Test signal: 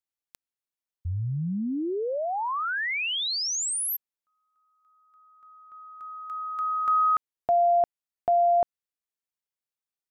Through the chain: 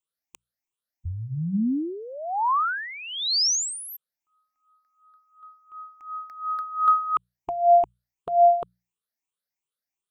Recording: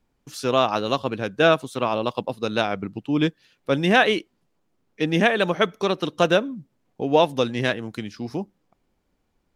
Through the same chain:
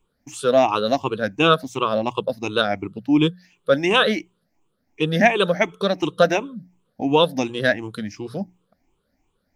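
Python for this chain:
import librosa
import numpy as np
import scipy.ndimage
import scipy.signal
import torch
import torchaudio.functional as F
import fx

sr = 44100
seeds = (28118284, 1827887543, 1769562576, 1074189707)

y = fx.spec_ripple(x, sr, per_octave=0.68, drift_hz=2.8, depth_db=17)
y = fx.hum_notches(y, sr, base_hz=60, count=3)
y = F.gain(torch.from_numpy(y), -1.0).numpy()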